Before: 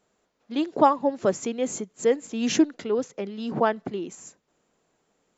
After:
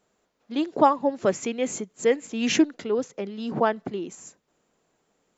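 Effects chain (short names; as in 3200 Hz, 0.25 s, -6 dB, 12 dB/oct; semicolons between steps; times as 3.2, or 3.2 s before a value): 1.23–2.62 dynamic EQ 2300 Hz, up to +7 dB, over -47 dBFS, Q 1.6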